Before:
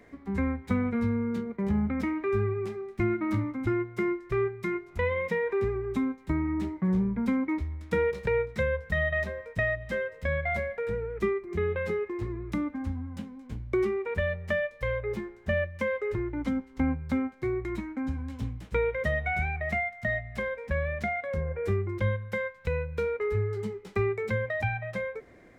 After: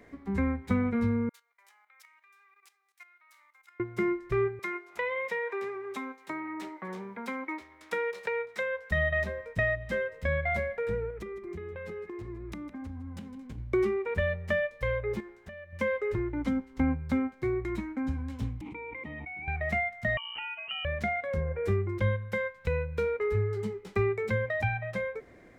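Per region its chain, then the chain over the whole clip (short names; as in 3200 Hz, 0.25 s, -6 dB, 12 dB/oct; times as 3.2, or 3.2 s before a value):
1.29–3.8 HPF 760 Hz 24 dB/oct + level quantiser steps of 12 dB + differentiator
4.59–8.91 HPF 600 Hz + three-band squash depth 40%
11.1–13.58 compressor 16:1, threshold -36 dBFS + echo 0.158 s -14 dB
15.2–15.73 low shelf 330 Hz -8.5 dB + compressor 10:1, threshold -41 dBFS
18.61–19.48 vowel filter u + bell 5200 Hz -7 dB 0.66 oct + fast leveller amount 100%
20.17–20.85 compressor 3:1, threshold -36 dBFS + inverted band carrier 3000 Hz
whole clip: dry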